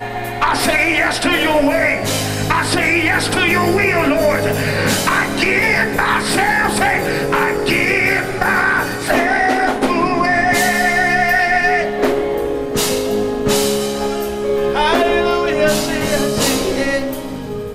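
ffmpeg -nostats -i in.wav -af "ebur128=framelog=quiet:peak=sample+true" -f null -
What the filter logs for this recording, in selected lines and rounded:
Integrated loudness:
  I:         -15.1 LUFS
  Threshold: -25.2 LUFS
Loudness range:
  LRA:         2.2 LU
  Threshold: -35.0 LUFS
  LRA low:   -16.4 LUFS
  LRA high:  -14.2 LUFS
Sample peak:
  Peak:       -3.0 dBFS
True peak:
  Peak:       -2.9 dBFS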